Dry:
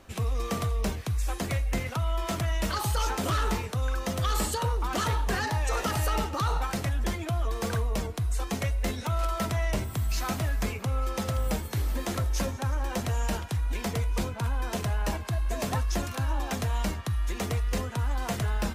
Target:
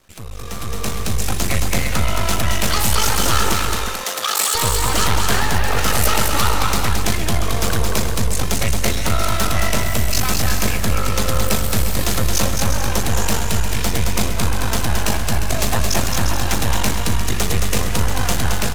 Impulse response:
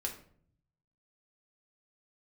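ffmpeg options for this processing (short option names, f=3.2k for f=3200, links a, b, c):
-filter_complex "[0:a]aeval=exprs='max(val(0),0)':c=same,asettb=1/sr,asplit=3[a][b][c];[a]atrim=end=3.534[d];[b]atrim=start=3.53:end=4.55,asetpts=PTS-STARTPTS,afade=t=in:d=0.004:c=qsin,afade=t=out:st=1.016:d=0.004:c=qsin,highpass=630[e];[c]atrim=start=4.546[f];[d][e]acrossfade=d=0.004:c1=hsin:c2=qsin[g];[g][f]acrossfade=d=0.004:c1=qsin:c2=hsin,asettb=1/sr,asplit=3[h][i][j];[h]atrim=end=5.364[k];[i]atrim=start=5.36:end=5.78,asetpts=PTS-STARTPTS,afade=t=in:d=0.004:c=qsin,afade=t=out:st=0.416:d=0.004:c=qsin,equalizer=f=7k:t=o:w=1.5:g=-14[l];[j]atrim=start=5.776[m];[k][l]acrossfade=d=0.004:c1=hsin:c2=qsin[n];[n][m]acrossfade=d=0.004:c1=qsin:c2=hsin,aecho=1:1:220|352|431.2|478.7|507.2:0.631|0.398|0.251|0.158|0.1,dynaudnorm=f=250:g=7:m=14dB,highshelf=f=2.5k:g=8.5,volume=-1.5dB"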